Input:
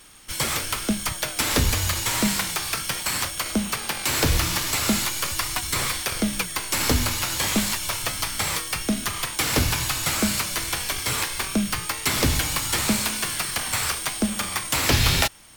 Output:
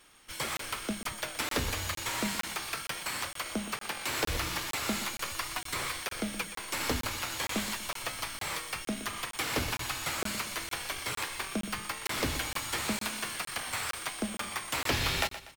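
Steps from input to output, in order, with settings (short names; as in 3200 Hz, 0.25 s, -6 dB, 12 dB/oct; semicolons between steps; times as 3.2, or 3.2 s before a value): tone controls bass -7 dB, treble -6 dB; on a send: feedback echo 0.121 s, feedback 37%, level -13 dB; on the sum: crackling interface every 0.46 s, samples 1024, zero, from 0.57; gain -7 dB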